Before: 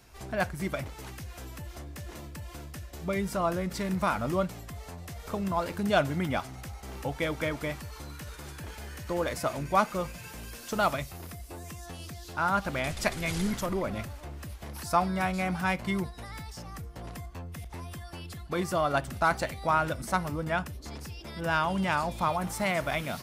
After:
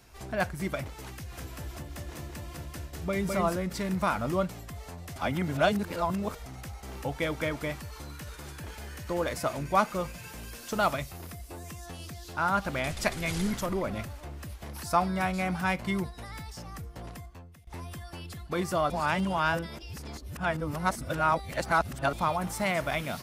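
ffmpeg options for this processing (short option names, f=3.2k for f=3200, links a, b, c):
-filter_complex "[0:a]asettb=1/sr,asplit=3[a][b][c];[a]atrim=end=1.114[d];[b]atrim=start=1.11:end=3.56,asetpts=PTS-STARTPTS,afade=t=in:d=0.004:c=qsin,afade=t=out:st=2.446:d=0.004:c=qsin,aecho=1:1:207:0.708,atrim=end_sample=108045[e];[c]atrim=start=3.556[f];[d][e]acrossfade=d=0.004:c1=hsin:c2=qsin[g];[g][f]acrossfade=d=0.004:c1=qsin:c2=hsin,asplit=6[h][i][j][k][l][m];[h]atrim=end=5.162[n];[i]atrim=start=5.158:end=6.462,asetpts=PTS-STARTPTS,areverse[o];[j]atrim=start=6.458:end=17.67,asetpts=PTS-STARTPTS,afade=t=out:st=10.542:d=0.67:silence=0.0707946[p];[k]atrim=start=17.67:end=18.902,asetpts=PTS-STARTPTS,afade=t=in:d=0.004:c=hsin:silence=0.0707946[q];[l]atrim=start=18.898:end=22.132,asetpts=PTS-STARTPTS,areverse[r];[m]atrim=start=22.128[s];[n][o]acrossfade=d=0.004:c1=hsin:c2=hsin[t];[p][q]concat=n=2:v=0:a=1[u];[t][u]acrossfade=d=0.004:c1=hsin:c2=hsin[v];[v][r]acrossfade=d=0.004:c1=hsin:c2=hsin[w];[w][s]acrossfade=d=0.004:c1=hsin:c2=hsin"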